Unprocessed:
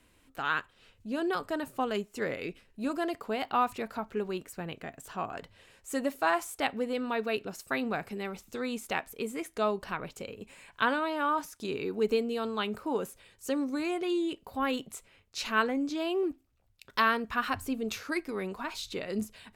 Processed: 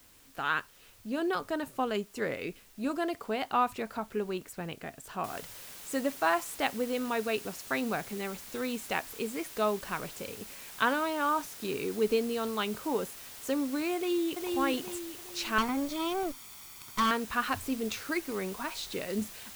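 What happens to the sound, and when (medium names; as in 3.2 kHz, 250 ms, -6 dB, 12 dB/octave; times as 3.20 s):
5.24 s: noise floor step -60 dB -47 dB
13.95–14.54 s: echo throw 410 ms, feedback 40%, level -3.5 dB
15.58–17.11 s: comb filter that takes the minimum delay 0.88 ms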